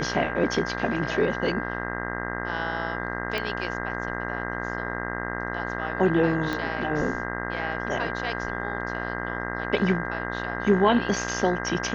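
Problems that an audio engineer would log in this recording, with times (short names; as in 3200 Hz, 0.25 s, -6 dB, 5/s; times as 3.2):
buzz 60 Hz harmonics 34 -32 dBFS
tone 1600 Hz -34 dBFS
3.38 pop -16 dBFS
6.53 pop -15 dBFS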